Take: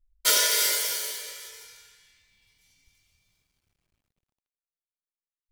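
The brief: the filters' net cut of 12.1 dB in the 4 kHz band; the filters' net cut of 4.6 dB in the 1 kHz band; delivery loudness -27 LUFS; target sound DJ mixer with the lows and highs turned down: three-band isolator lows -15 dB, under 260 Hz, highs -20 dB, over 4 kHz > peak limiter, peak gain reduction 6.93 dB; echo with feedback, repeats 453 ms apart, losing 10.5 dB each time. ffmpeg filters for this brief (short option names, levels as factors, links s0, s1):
-filter_complex "[0:a]acrossover=split=260 4000:gain=0.178 1 0.1[s0][s1][s2];[s0][s1][s2]amix=inputs=3:normalize=0,equalizer=f=1000:t=o:g=-5.5,equalizer=f=4000:t=o:g=-9,aecho=1:1:453|906|1359:0.299|0.0896|0.0269,volume=3.16,alimiter=limit=0.158:level=0:latency=1"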